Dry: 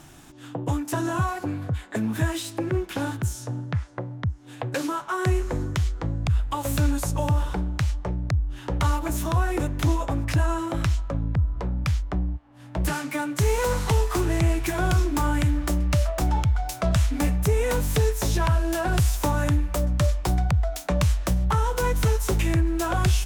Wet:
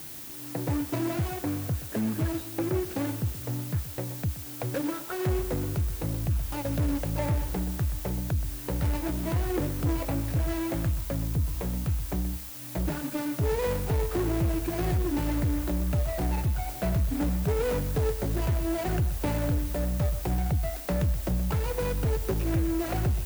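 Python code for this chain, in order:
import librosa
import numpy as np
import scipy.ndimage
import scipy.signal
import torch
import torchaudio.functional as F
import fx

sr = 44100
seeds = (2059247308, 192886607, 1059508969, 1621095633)

p1 = scipy.ndimage.median_filter(x, 41, mode='constant')
p2 = fx.quant_dither(p1, sr, seeds[0], bits=6, dither='triangular')
p3 = p1 + (p2 * librosa.db_to_amplitude(-10.5))
p4 = scipy.signal.sosfilt(scipy.signal.butter(2, 54.0, 'highpass', fs=sr, output='sos'), p3)
p5 = fx.low_shelf(p4, sr, hz=260.0, db=-4.0)
p6 = 10.0 ** (-20.5 / 20.0) * np.tanh(p5 / 10.0 ** (-20.5 / 20.0))
p7 = fx.high_shelf(p6, sr, hz=12000.0, db=8.5)
y = p7 + fx.echo_single(p7, sr, ms=125, db=-14.0, dry=0)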